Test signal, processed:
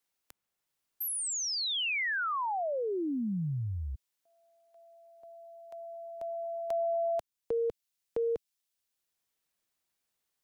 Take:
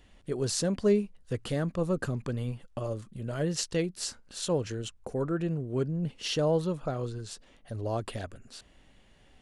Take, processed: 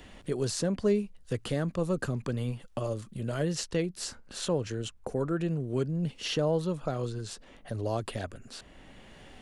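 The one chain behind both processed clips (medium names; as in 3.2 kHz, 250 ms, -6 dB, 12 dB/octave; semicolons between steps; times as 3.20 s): three bands compressed up and down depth 40%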